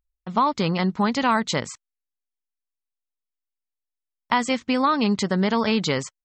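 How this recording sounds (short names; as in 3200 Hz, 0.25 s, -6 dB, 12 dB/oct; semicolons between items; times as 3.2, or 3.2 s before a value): noise floor -86 dBFS; spectral tilt -5.0 dB/oct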